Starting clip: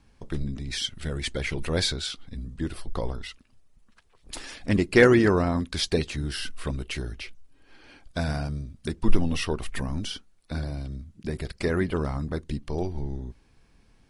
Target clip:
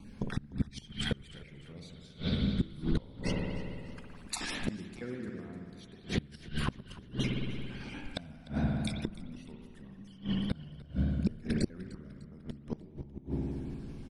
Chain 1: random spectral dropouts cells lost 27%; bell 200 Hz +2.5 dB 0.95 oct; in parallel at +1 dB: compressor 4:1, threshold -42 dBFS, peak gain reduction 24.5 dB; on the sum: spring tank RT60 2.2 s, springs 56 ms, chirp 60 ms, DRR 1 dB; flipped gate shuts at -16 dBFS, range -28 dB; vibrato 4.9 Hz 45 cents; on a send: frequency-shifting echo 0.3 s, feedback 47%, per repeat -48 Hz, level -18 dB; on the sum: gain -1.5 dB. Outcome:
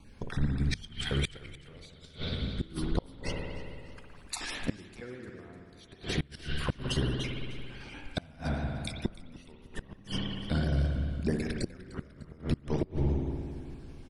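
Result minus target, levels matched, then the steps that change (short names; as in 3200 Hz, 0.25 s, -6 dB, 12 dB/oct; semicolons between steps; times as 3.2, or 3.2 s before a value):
250 Hz band -3.0 dB
change: bell 200 Hz +13 dB 0.95 oct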